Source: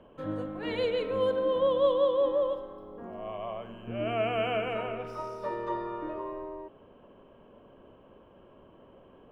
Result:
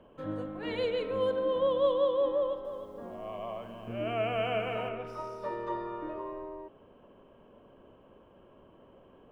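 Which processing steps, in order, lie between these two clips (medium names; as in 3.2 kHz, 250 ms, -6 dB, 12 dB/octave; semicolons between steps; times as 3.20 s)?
2.34–4.89 s: bit-crushed delay 307 ms, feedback 35%, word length 10-bit, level -10 dB; trim -2 dB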